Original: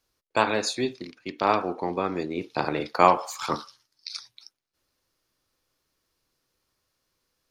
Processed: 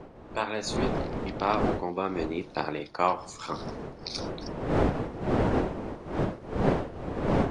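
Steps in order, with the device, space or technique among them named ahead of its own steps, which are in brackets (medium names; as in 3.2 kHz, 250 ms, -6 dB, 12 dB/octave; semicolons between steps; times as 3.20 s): smartphone video outdoors (wind noise 500 Hz -30 dBFS; level rider gain up to 13.5 dB; trim -9 dB; AAC 48 kbps 22.05 kHz)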